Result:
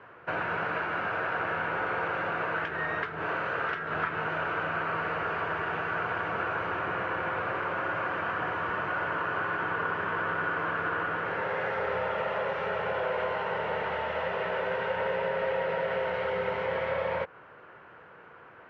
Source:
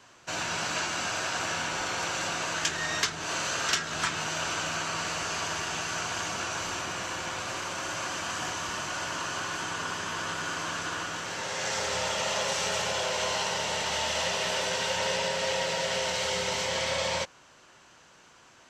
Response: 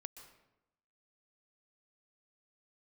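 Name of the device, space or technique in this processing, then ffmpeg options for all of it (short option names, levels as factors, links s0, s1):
bass amplifier: -af "acompressor=threshold=0.0251:ratio=6,highpass=70,equalizer=f=250:t=q:w=4:g=-5,equalizer=f=460:t=q:w=4:g=8,equalizer=f=1400:t=q:w=4:g=4,lowpass=f=2100:w=0.5412,lowpass=f=2100:w=1.3066,volume=1.78"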